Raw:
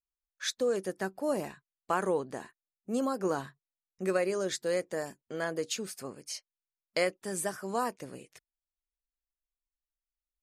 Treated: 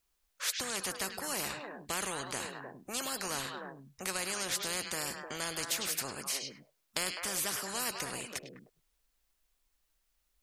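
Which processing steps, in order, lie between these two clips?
echo through a band-pass that steps 102 ms, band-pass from 3,500 Hz, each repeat −1.4 octaves, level −9 dB
every bin compressed towards the loudest bin 4 to 1
level −1 dB

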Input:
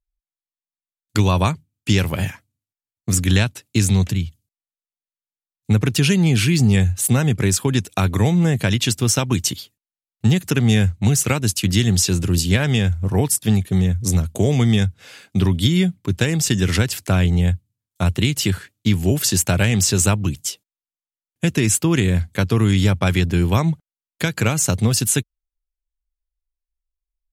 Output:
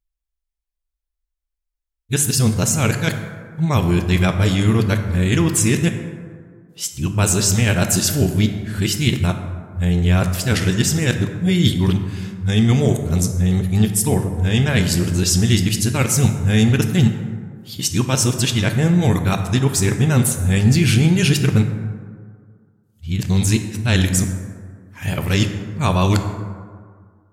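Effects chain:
played backwards from end to start
dense smooth reverb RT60 1.9 s, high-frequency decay 0.4×, DRR 6 dB

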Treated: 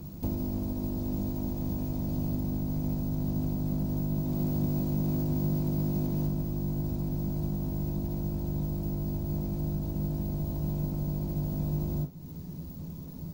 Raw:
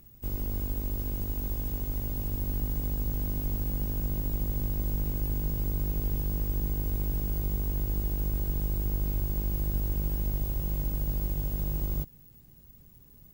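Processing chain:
0:04.22–0:06.25: low-shelf EQ 77 Hz −8.5 dB
downward compressor 8 to 1, threshold −41 dBFS, peak gain reduction 17 dB
convolution reverb RT60 0.30 s, pre-delay 3 ms, DRR −9 dB

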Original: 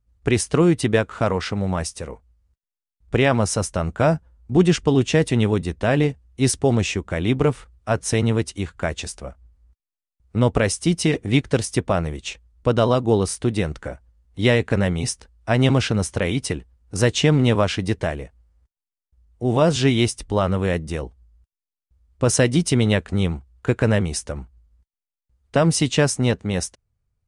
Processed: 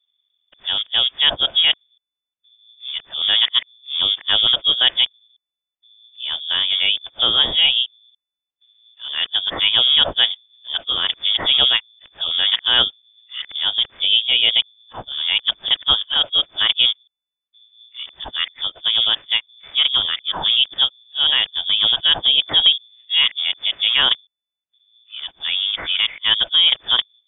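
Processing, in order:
played backwards from end to start
voice inversion scrambler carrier 3,500 Hz
level +1 dB

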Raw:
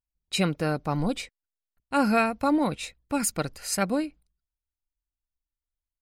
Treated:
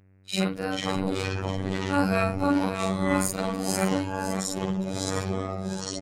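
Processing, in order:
every overlapping window played backwards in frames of 107 ms
on a send: single-tap delay 560 ms −10 dB
on the sum: hum with harmonics 100 Hz, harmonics 28, −61 dBFS −7 dB per octave
delay with pitch and tempo change per echo 356 ms, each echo −4 semitones, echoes 3
phases set to zero 95.2 Hz
level +3.5 dB

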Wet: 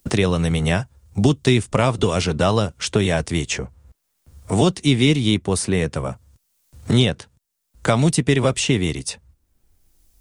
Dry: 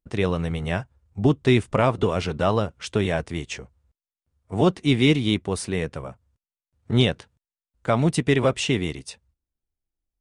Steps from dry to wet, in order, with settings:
bass and treble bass +3 dB, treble +10 dB
multiband upward and downward compressor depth 70%
level +2 dB

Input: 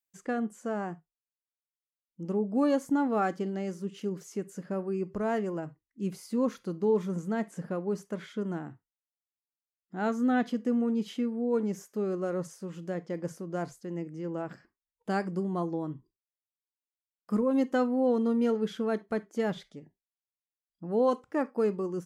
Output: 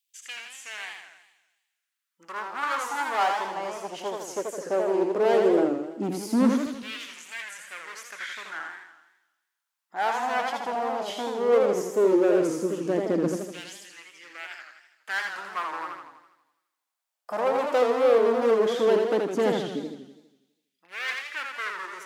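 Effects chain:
gain into a clipping stage and back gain 31 dB
auto-filter high-pass saw down 0.15 Hz 240–3,100 Hz
delay with a high-pass on its return 64 ms, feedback 76%, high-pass 4,200 Hz, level −13 dB
feedback echo with a swinging delay time 82 ms, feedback 56%, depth 163 cents, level −4 dB
level +7.5 dB

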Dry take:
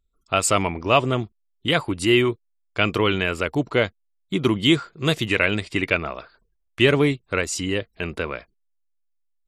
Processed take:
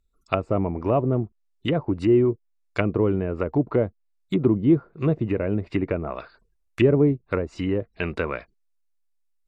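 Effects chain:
notch filter 3,200 Hz, Q 8.6
treble cut that deepens with the level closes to 540 Hz, closed at −19 dBFS
level +1.5 dB

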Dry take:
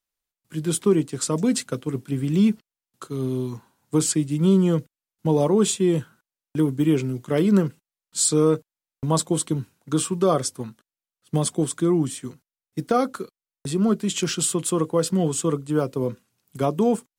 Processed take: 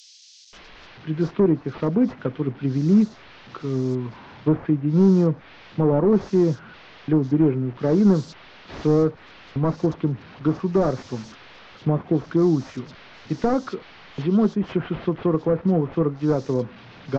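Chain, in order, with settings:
linear delta modulator 32 kbit/s, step −38 dBFS
treble cut that deepens with the level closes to 1,400 Hz, closed at −20 dBFS
multiband delay without the direct sound highs, lows 530 ms, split 3,700 Hz
level +2 dB

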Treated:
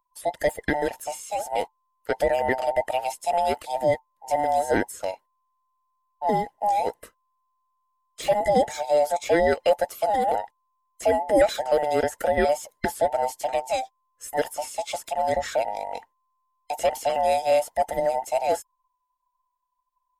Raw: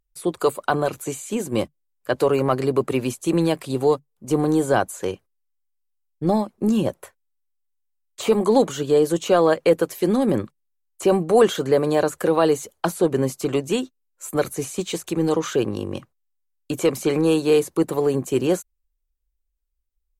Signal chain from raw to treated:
frequency inversion band by band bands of 1,000 Hz
level −3.5 dB

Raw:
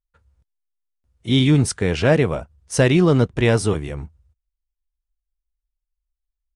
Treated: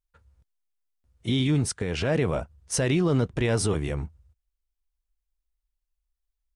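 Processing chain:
brickwall limiter −15.5 dBFS, peak gain reduction 11.5 dB
0:01.43–0:02.15: expander for the loud parts 1.5 to 1, over −44 dBFS

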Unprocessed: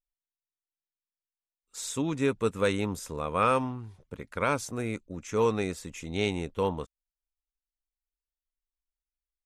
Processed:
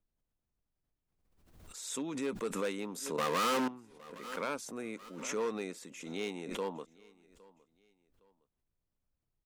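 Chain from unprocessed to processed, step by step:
0:03.18–0:03.68: leveller curve on the samples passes 5
hard clipping −21 dBFS, distortion −11 dB
high-pass filter 200 Hz 24 dB per octave
background noise brown −77 dBFS
repeating echo 812 ms, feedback 33%, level −23.5 dB
background raised ahead of every attack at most 54 dB per second
level −8 dB

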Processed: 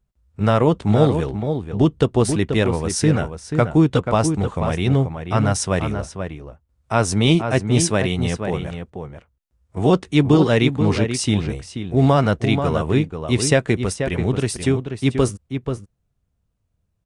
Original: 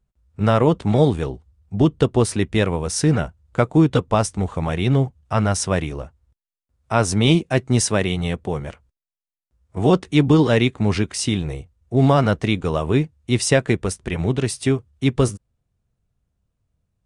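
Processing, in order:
slap from a distant wall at 83 metres, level −7 dB

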